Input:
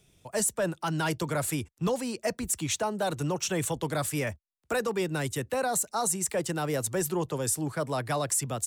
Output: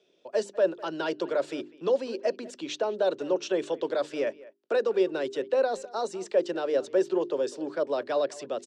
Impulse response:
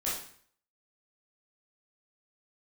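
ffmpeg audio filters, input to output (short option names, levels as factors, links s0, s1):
-filter_complex "[0:a]highpass=f=260:w=0.5412,highpass=f=260:w=1.3066,equalizer=f=390:t=q:w=4:g=8,equalizer=f=560:t=q:w=4:g=9,equalizer=f=810:t=q:w=4:g=-4,equalizer=f=1200:t=q:w=4:g=-4,equalizer=f=2100:t=q:w=4:g=-7,lowpass=f=4800:w=0.5412,lowpass=f=4800:w=1.3066,bandreject=f=50:t=h:w=6,bandreject=f=100:t=h:w=6,bandreject=f=150:t=h:w=6,bandreject=f=200:t=h:w=6,bandreject=f=250:t=h:w=6,bandreject=f=300:t=h:w=6,bandreject=f=350:t=h:w=6,bandreject=f=400:t=h:w=6,asplit=2[s0][s1];[s1]adelay=200,highpass=300,lowpass=3400,asoftclip=type=hard:threshold=0.1,volume=0.112[s2];[s0][s2]amix=inputs=2:normalize=0,volume=0.891"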